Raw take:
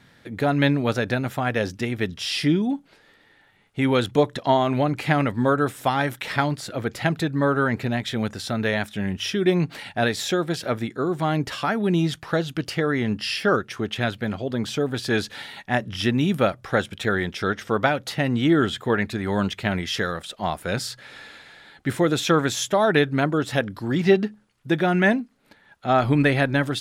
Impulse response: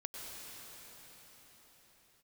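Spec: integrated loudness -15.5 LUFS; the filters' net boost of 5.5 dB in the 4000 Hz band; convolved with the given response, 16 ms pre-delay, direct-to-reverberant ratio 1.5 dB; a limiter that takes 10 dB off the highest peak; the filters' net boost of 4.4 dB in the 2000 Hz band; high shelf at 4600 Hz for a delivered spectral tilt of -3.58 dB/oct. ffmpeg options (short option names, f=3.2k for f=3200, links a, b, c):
-filter_complex "[0:a]equalizer=f=2k:t=o:g=5,equalizer=f=4k:t=o:g=8.5,highshelf=f=4.6k:g=-7,alimiter=limit=-11.5dB:level=0:latency=1,asplit=2[a][b];[1:a]atrim=start_sample=2205,adelay=16[c];[b][c]afir=irnorm=-1:irlink=0,volume=-1dB[d];[a][d]amix=inputs=2:normalize=0,volume=6dB"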